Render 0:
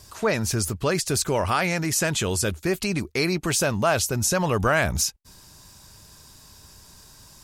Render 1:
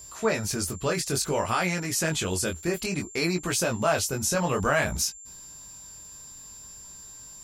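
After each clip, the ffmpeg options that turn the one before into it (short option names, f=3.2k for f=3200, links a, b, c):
-af "flanger=delay=16.5:depth=6.6:speed=0.57,aeval=exprs='val(0)+0.00708*sin(2*PI*7300*n/s)':c=same,equalizer=f=100:t=o:w=0.8:g=-4"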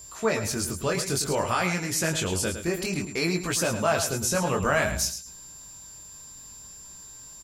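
-af "aecho=1:1:108|216|324:0.335|0.0703|0.0148"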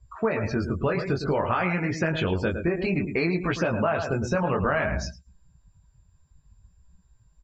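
-af "lowpass=2.6k,afftdn=nr=27:nf=-42,acompressor=threshold=-28dB:ratio=6,volume=7dB"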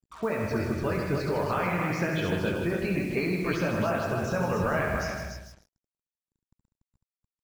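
-filter_complex "[0:a]asplit=2[a][b];[b]aecho=0:1:156|312|468:0.422|0.0843|0.0169[c];[a][c]amix=inputs=2:normalize=0,acrusher=bits=6:mix=0:aa=0.5,asplit=2[d][e];[e]aecho=0:1:69.97|288.6:0.501|0.562[f];[d][f]amix=inputs=2:normalize=0,volume=-5dB"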